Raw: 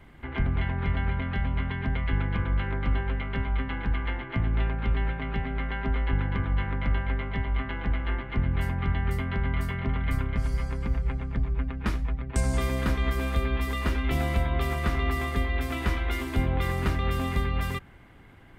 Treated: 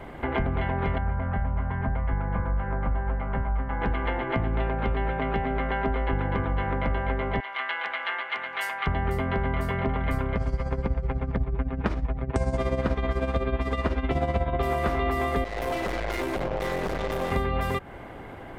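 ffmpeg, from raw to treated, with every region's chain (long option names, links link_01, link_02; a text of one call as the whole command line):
ffmpeg -i in.wav -filter_complex "[0:a]asettb=1/sr,asplit=3[link_01][link_02][link_03];[link_01]atrim=end=0.984[link_04];[link_02]atrim=start=0.98:end=3.82,asetpts=PTS-STARTPTS,afade=type=in:duration=0.004:curve=qsin,afade=type=out:start_time=2.836:duration=0.004:curve=qsin,lowpass=1200,equalizer=frequency=370:width_type=o:width=1.3:gain=-12,asplit=2[link_05][link_06];[link_06]adelay=36,volume=-12.5dB[link_07];[link_05][link_07]amix=inputs=2:normalize=0,atrim=end_sample=125244[link_08];[link_03]atrim=start=3.816[link_09];[link_04][link_08]acrossfade=duration=0.004:curve1=hsin:curve2=qsin[link_10];[link_10][link_09]acrossfade=duration=0.004:curve1=qsin:curve2=hsin,asettb=1/sr,asplit=3[link_11][link_12][link_13];[link_11]atrim=end=7.404[link_14];[link_12]atrim=start=7.4:end=8.87,asetpts=PTS-STARTPTS,afade=type=in:duration=0.004:curve=qsin,afade=type=out:start_time=1.466:duration=0.004:curve=qsin,highpass=1400,equalizer=frequency=7400:width=0.41:gain=5.5[link_15];[link_13]atrim=start=8.866[link_16];[link_14][link_15]acrossfade=duration=0.004:curve1=hsin:curve2=qsin[link_17];[link_17][link_16]acrossfade=duration=0.004:curve1=qsin:curve2=hsin,asettb=1/sr,asplit=3[link_18][link_19][link_20];[link_18]atrim=end=10.364[link_21];[link_19]atrim=start=10.36:end=14.63,asetpts=PTS-STARTPTS,afade=type=in:duration=0.004:curve=qsin,afade=type=out:start_time=4.266:duration=0.004:curve=qsin,lowpass=6400,equalizer=frequency=95:width_type=o:width=2.1:gain=5.5,tremolo=f=16:d=0.65[link_22];[link_20]atrim=start=14.626[link_23];[link_21][link_22]acrossfade=duration=0.004:curve1=hsin:curve2=qsin[link_24];[link_24][link_23]acrossfade=duration=0.004:curve1=qsin:curve2=hsin,asettb=1/sr,asplit=3[link_25][link_26][link_27];[link_25]atrim=end=15.444[link_28];[link_26]atrim=start=15.44:end=17.32,asetpts=PTS-STARTPTS,afade=type=in:duration=0.004:curve=qsin,afade=type=out:start_time=1.876:duration=0.004:curve=qsin,aecho=1:1:5.6:0.5,atrim=end_sample=82908,aeval=exprs='(tanh(63.1*val(0)+0.6)-tanh(0.6))/63.1':channel_layout=same[link_29];[link_27]atrim=start=17.316[link_30];[link_28][link_29]acrossfade=duration=0.004:curve1=hsin:curve2=qsin[link_31];[link_31][link_30]acrossfade=duration=0.004:curve1=qsin:curve2=hsin,equalizer=frequency=600:width=0.7:gain=13,acompressor=threshold=-32dB:ratio=3,volume=6.5dB" out.wav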